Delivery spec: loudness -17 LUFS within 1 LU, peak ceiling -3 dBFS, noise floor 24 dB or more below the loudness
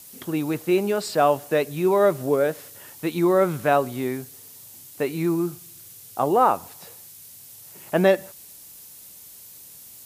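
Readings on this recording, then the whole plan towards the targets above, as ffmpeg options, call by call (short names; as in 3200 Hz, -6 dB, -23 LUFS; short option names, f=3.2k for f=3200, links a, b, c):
noise floor -45 dBFS; noise floor target -47 dBFS; loudness -22.5 LUFS; peak -6.0 dBFS; loudness target -17.0 LUFS
-> -af "afftdn=nr=6:nf=-45"
-af "volume=5.5dB,alimiter=limit=-3dB:level=0:latency=1"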